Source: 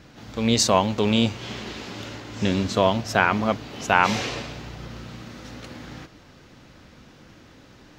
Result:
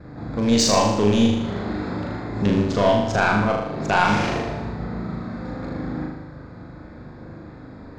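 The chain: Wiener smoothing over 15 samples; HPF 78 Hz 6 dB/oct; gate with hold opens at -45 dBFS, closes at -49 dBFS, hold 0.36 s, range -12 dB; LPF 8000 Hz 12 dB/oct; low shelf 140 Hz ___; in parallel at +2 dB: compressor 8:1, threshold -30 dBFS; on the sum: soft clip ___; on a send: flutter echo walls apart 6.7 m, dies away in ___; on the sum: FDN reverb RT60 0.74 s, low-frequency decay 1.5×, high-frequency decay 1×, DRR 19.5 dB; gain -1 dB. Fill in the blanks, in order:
+8 dB, -9.5 dBFS, 0.87 s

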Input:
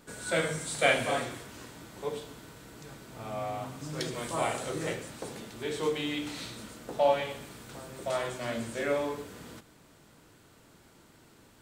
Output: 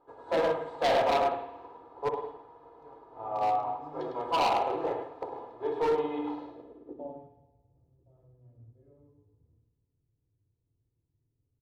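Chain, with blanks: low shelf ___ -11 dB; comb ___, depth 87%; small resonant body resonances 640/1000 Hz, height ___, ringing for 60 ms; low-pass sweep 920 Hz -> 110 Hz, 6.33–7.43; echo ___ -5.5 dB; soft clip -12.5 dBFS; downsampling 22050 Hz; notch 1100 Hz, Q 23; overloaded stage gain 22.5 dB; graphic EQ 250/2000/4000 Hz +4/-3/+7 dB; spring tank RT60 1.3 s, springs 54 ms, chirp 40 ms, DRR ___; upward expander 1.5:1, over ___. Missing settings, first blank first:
270 Hz, 2.4 ms, 16 dB, 0.104 s, 8.5 dB, -45 dBFS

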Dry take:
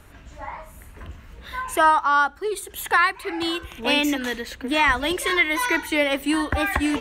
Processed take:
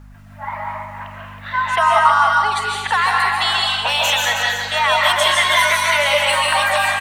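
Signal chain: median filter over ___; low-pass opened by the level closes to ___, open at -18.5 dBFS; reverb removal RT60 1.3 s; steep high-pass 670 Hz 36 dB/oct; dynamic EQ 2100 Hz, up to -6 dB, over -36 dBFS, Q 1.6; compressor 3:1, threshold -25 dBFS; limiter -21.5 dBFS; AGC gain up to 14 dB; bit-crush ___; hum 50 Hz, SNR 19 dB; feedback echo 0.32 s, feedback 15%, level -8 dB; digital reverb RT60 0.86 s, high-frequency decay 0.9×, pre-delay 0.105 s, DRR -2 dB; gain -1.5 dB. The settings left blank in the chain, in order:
3 samples, 1800 Hz, 10-bit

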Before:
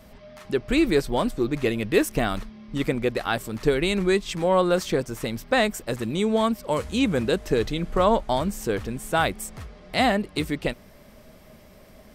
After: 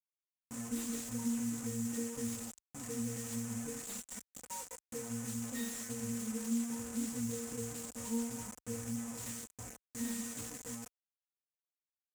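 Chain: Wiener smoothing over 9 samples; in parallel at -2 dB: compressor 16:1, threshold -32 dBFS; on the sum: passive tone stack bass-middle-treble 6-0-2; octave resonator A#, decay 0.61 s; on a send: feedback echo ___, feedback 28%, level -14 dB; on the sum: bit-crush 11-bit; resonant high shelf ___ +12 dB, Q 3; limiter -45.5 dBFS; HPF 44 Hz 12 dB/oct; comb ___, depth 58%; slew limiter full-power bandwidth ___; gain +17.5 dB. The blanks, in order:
0.193 s, 5300 Hz, 4 ms, 8.5 Hz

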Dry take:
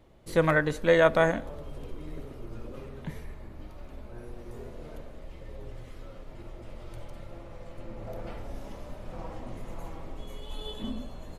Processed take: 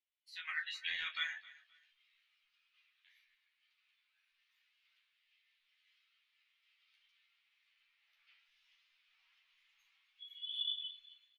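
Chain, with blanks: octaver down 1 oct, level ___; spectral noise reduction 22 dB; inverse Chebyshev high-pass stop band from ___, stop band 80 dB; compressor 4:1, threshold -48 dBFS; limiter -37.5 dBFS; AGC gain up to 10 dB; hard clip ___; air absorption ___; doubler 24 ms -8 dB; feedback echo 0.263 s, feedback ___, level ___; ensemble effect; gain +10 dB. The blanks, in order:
+2 dB, 440 Hz, -30 dBFS, 310 m, 28%, -19.5 dB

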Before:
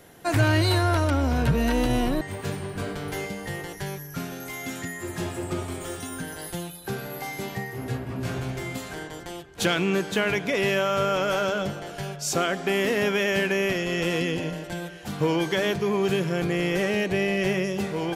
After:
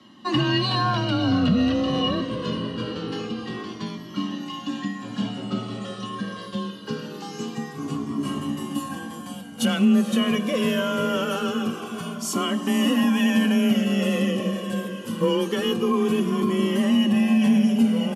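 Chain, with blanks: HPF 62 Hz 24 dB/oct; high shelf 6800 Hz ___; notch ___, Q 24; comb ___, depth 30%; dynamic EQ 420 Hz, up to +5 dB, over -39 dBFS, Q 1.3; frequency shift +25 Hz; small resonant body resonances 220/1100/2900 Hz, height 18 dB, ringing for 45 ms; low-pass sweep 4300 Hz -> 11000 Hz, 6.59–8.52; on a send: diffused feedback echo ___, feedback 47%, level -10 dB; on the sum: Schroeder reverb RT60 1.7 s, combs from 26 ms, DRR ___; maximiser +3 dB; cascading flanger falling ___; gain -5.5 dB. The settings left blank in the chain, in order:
+4.5 dB, 2100 Hz, 3.9 ms, 0.498 s, 18 dB, 0.24 Hz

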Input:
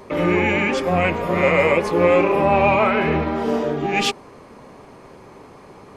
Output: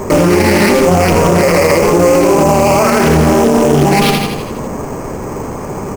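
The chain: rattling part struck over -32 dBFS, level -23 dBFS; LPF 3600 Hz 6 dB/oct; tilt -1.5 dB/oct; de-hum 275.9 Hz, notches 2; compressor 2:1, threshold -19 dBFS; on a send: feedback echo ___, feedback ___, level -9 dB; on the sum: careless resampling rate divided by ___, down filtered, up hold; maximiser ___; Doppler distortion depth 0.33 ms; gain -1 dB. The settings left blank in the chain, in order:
82 ms, 57%, 6×, +20 dB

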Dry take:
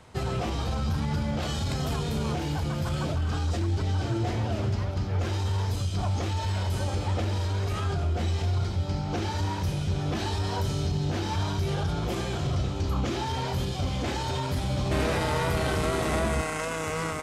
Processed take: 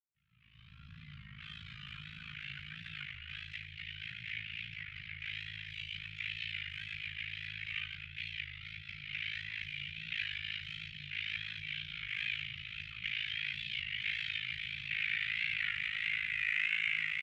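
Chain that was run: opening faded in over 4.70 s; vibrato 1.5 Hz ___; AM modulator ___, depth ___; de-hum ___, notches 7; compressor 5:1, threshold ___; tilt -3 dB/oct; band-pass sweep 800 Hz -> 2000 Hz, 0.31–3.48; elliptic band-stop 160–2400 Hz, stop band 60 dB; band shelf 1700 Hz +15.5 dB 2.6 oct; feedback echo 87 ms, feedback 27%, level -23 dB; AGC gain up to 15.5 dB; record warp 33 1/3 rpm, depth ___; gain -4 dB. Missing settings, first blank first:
96 cents, 54 Hz, 85%, 65.9 Hz, -38 dBFS, 100 cents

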